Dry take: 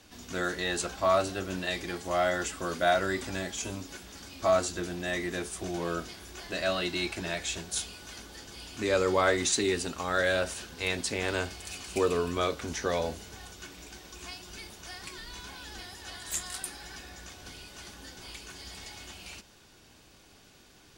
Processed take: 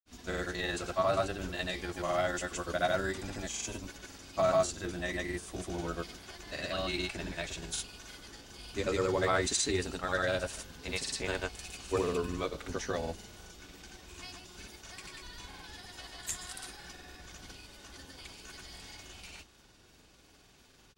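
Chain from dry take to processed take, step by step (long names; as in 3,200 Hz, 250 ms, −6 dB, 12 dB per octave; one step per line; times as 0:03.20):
sub-octave generator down 2 octaves, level −4 dB
granular cloud, pitch spread up and down by 0 semitones
level −2.5 dB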